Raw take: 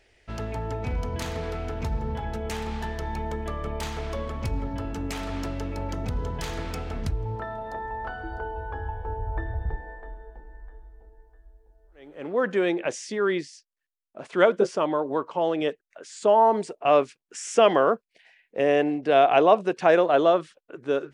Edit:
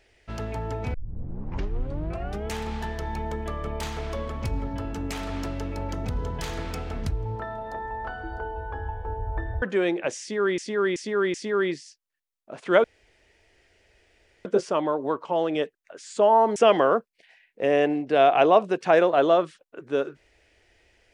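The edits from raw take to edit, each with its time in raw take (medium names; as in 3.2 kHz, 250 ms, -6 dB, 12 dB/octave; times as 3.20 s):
0.94 s: tape start 1.54 s
9.62–12.43 s: delete
13.01–13.39 s: loop, 4 plays
14.51 s: insert room tone 1.61 s
16.62–17.52 s: delete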